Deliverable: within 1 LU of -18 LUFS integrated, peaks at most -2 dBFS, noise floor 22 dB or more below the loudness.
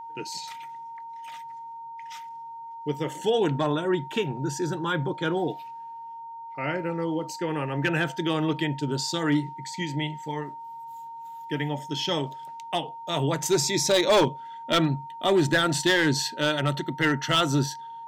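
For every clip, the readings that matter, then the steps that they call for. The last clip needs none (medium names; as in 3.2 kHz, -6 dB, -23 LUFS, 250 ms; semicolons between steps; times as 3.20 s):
clipped samples 0.5%; clipping level -15.0 dBFS; steady tone 920 Hz; tone level -37 dBFS; loudness -26.0 LUFS; peak level -15.0 dBFS; loudness target -18.0 LUFS
-> clip repair -15 dBFS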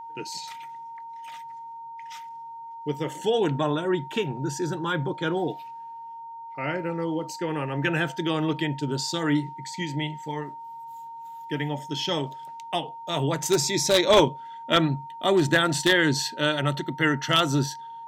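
clipped samples 0.0%; steady tone 920 Hz; tone level -37 dBFS
-> band-stop 920 Hz, Q 30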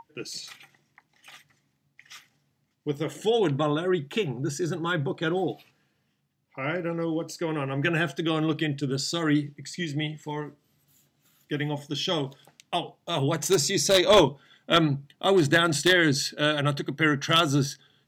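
steady tone not found; loudness -25.5 LUFS; peak level -6.0 dBFS; loudness target -18.0 LUFS
-> trim +7.5 dB; peak limiter -2 dBFS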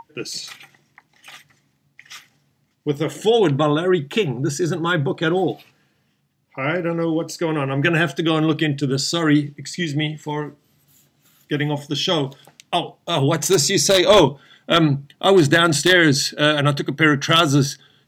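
loudness -18.5 LUFS; peak level -2.0 dBFS; noise floor -65 dBFS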